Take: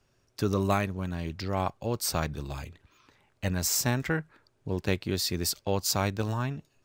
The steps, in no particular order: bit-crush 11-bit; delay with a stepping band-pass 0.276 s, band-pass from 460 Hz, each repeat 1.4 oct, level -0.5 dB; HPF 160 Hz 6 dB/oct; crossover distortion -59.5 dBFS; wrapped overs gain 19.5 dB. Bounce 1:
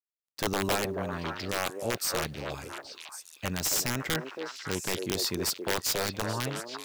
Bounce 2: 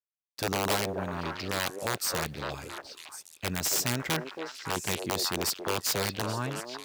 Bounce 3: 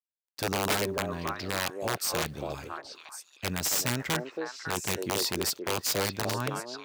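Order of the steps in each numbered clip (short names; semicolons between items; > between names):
crossover distortion > HPF > wrapped overs > delay with a stepping band-pass > bit-crush; wrapped overs > HPF > bit-crush > delay with a stepping band-pass > crossover distortion; crossover distortion > bit-crush > delay with a stepping band-pass > wrapped overs > HPF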